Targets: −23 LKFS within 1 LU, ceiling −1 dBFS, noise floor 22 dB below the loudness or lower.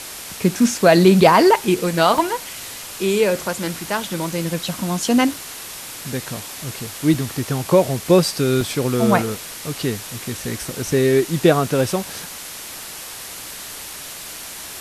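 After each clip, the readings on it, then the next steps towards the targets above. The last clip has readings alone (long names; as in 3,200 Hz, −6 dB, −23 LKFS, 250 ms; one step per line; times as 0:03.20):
number of dropouts 5; longest dropout 2.2 ms; background noise floor −34 dBFS; target noise floor −41 dBFS; integrated loudness −19.0 LKFS; sample peak −1.0 dBFS; target loudness −23.0 LKFS
→ repair the gap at 0:02.18/0:04.32/0:05.34/0:07.14/0:08.61, 2.2 ms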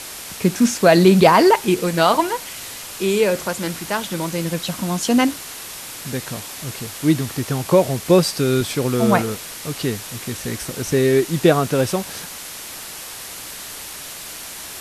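number of dropouts 0; background noise floor −34 dBFS; target noise floor −41 dBFS
→ broadband denoise 7 dB, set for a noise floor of −34 dBFS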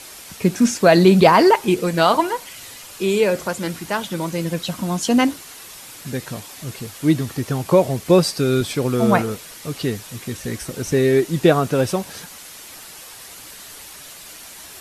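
background noise floor −39 dBFS; target noise floor −41 dBFS
→ broadband denoise 6 dB, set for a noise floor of −39 dBFS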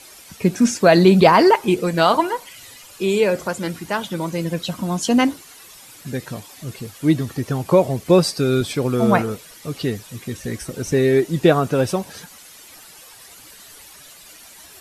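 background noise floor −44 dBFS; integrated loudness −18.5 LKFS; sample peak −1.0 dBFS; target loudness −23.0 LKFS
→ level −4.5 dB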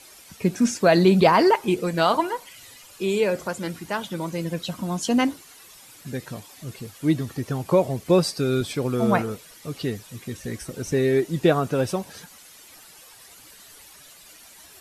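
integrated loudness −23.0 LKFS; sample peak −5.5 dBFS; background noise floor −48 dBFS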